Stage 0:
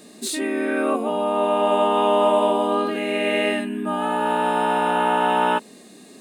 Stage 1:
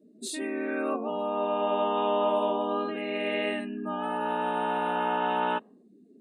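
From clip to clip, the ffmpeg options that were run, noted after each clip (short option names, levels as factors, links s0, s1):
-af "afftdn=nr=31:nf=-39,volume=0.398"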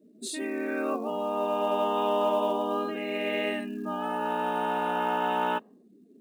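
-af "acrusher=bits=8:mode=log:mix=0:aa=0.000001"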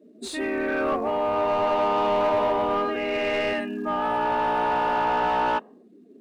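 -filter_complex "[0:a]bandreject=f=50:t=h:w=6,bandreject=f=100:t=h:w=6,bandreject=f=150:t=h:w=6,bandreject=f=200:t=h:w=6,asplit=2[s0][s1];[s1]highpass=f=720:p=1,volume=8.91,asoftclip=type=tanh:threshold=0.188[s2];[s0][s2]amix=inputs=2:normalize=0,lowpass=f=1500:p=1,volume=0.501"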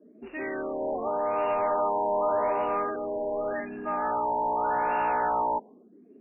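-filter_complex "[0:a]acrossover=split=420[s0][s1];[s0]asoftclip=type=tanh:threshold=0.015[s2];[s2][s1]amix=inputs=2:normalize=0,afftfilt=real='re*lt(b*sr/1024,990*pow(2900/990,0.5+0.5*sin(2*PI*0.85*pts/sr)))':imag='im*lt(b*sr/1024,990*pow(2900/990,0.5+0.5*sin(2*PI*0.85*pts/sr)))':win_size=1024:overlap=0.75,volume=0.75"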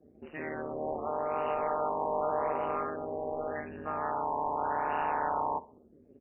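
-filter_complex "[0:a]tremolo=f=150:d=0.947,asplit=2[s0][s1];[s1]adelay=64,lowpass=f=1300:p=1,volume=0.126,asplit=2[s2][s3];[s3]adelay=64,lowpass=f=1300:p=1,volume=0.38,asplit=2[s4][s5];[s5]adelay=64,lowpass=f=1300:p=1,volume=0.38[s6];[s0][s2][s4][s6]amix=inputs=4:normalize=0,volume=0.891"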